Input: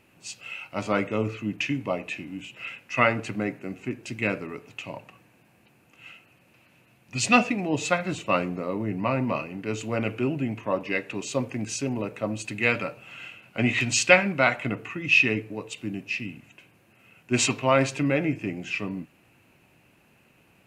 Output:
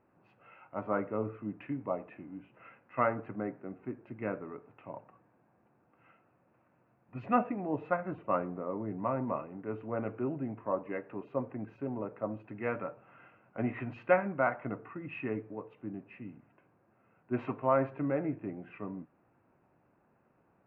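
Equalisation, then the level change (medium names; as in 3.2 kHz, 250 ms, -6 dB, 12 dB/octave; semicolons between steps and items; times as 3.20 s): low-pass 1.4 kHz 24 dB/octave; bass shelf 280 Hz -7 dB; -4.5 dB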